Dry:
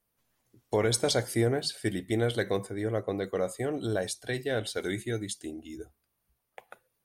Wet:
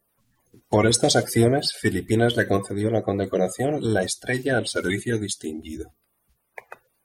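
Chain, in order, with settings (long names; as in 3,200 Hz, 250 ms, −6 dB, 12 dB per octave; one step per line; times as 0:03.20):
spectral magnitudes quantised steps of 30 dB
level +8.5 dB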